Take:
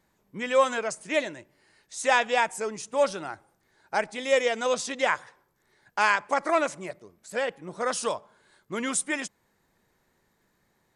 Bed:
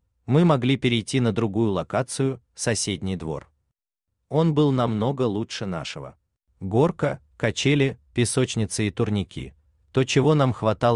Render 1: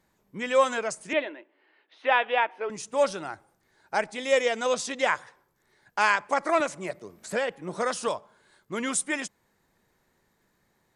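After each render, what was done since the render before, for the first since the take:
0:01.13–0:02.70: elliptic band-pass filter 290–3,200 Hz
0:06.60–0:08.08: multiband upward and downward compressor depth 70%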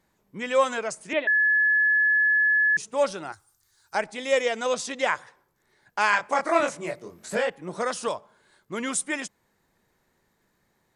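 0:01.27–0:02.77: beep over 1,710 Hz −17.5 dBFS
0:03.32–0:03.95: drawn EQ curve 100 Hz 0 dB, 220 Hz −19 dB, 380 Hz −12 dB, 560 Hz −19 dB, 1,200 Hz −2 dB, 2,200 Hz −8 dB, 4,800 Hz +8 dB, 7,600 Hz +11 dB
0:06.10–0:07.50: double-tracking delay 24 ms −2.5 dB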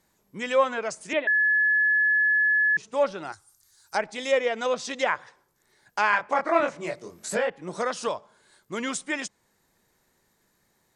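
treble cut that deepens with the level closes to 2,400 Hz, closed at −21.5 dBFS
bass and treble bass −1 dB, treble +7 dB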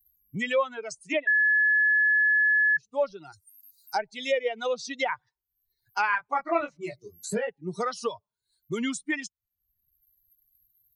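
spectral dynamics exaggerated over time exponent 2
multiband upward and downward compressor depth 70%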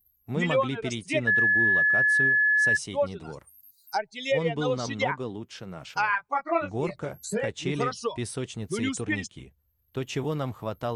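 mix in bed −11 dB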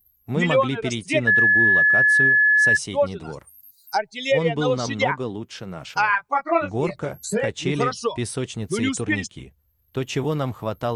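level +5.5 dB

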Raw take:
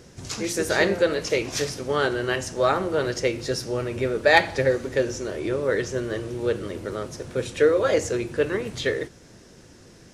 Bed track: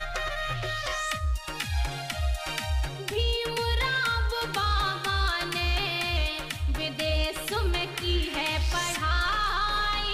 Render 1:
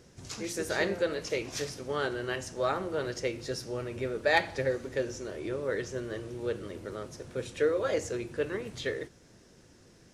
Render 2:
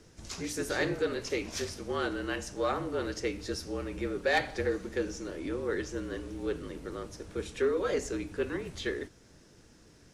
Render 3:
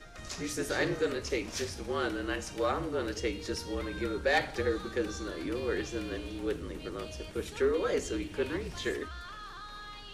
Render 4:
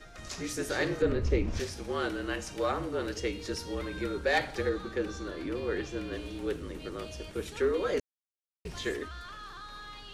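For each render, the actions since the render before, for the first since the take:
level −8.5 dB
frequency shifter −46 Hz; soft clipping −18.5 dBFS, distortion −20 dB
mix in bed track −18.5 dB
0:01.02–0:01.60: RIAA equalisation playback; 0:04.69–0:06.13: high-shelf EQ 5,200 Hz −8 dB; 0:08.00–0:08.65: silence

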